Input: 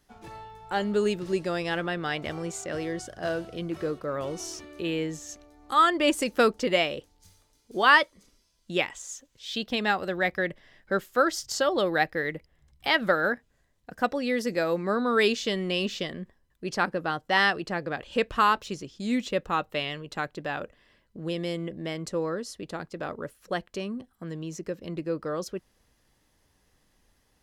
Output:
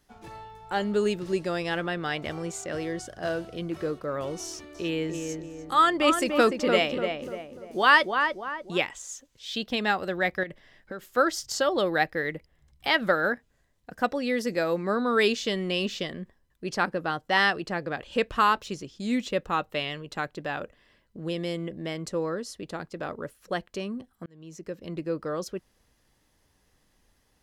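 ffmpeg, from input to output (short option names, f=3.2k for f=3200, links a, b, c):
-filter_complex "[0:a]asettb=1/sr,asplit=3[a][b][c];[a]atrim=end=4.454[d];[b]atrim=start=4.45:end=8.78,asetpts=PTS-STARTPTS,afade=t=in:d=0.004:c=qsin,afade=t=out:st=4.326:d=0.004:c=qsin,asplit=2[e][f];[f]adelay=295,lowpass=f=1.6k:p=1,volume=-4.5dB,asplit=2[g][h];[h]adelay=295,lowpass=f=1.6k:p=1,volume=0.45,asplit=2[i][j];[j]adelay=295,lowpass=f=1.6k:p=1,volume=0.45,asplit=2[k][l];[l]adelay=295,lowpass=f=1.6k:p=1,volume=0.45,asplit=2[m][n];[n]adelay=295,lowpass=f=1.6k:p=1,volume=0.45,asplit=2[o][p];[p]adelay=295,lowpass=f=1.6k:p=1,volume=0.45[q];[e][g][i][k][m][o][q]amix=inputs=7:normalize=0,atrim=end_sample=190953[r];[c]atrim=start=8.776[s];[d][r]acrossfade=d=0.004:c1=hsin:c2=qsin[t];[t][s]acrossfade=d=0.004:c1=qsin:c2=hsin,asettb=1/sr,asplit=3[u][v][w];[u]atrim=end=10.434[x];[v]atrim=start=10.43:end=11.17,asetpts=PTS-STARTPTS,afade=t=in:d=0.004:c=qsin,afade=t=out:st=0.736:d=0.004:c=qsin,acompressor=threshold=-32dB:ratio=10:attack=3.2:release=140:knee=1:detection=peak[y];[w]atrim=start=11.166[z];[x][y]acrossfade=d=0.004:c1=hsin:c2=qsin[aa];[aa][z]acrossfade=d=0.004:c1=qsin:c2=hsin,asplit=2[ab][ac];[ab]atrim=end=24.26,asetpts=PTS-STARTPTS,afade=t=out:st=24.256:d=0.004:c=hsin[ad];[ac]atrim=start=24.26,asetpts=PTS-STARTPTS,afade=t=in:d=0.88:c=qsin[ae];[ad][ae]concat=n=2:v=0:a=1"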